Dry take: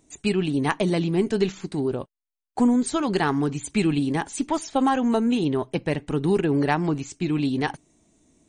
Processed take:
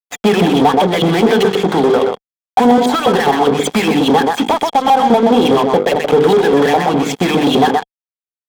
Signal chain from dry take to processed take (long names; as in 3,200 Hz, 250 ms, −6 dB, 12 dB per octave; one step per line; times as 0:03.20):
auto-filter band-pass saw up 4.9 Hz 540–3,100 Hz
mains-hum notches 50/100/150/200/250/300/350/400/450/500 Hz
downward compressor 12 to 1, threshold −41 dBFS, peak gain reduction 19.5 dB
single-tap delay 125 ms −8.5 dB
fuzz pedal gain 52 dB, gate −59 dBFS
low-shelf EQ 94 Hz −6.5 dB
hollow resonant body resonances 200/460/730/3,300 Hz, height 14 dB, ringing for 20 ms
level −5 dB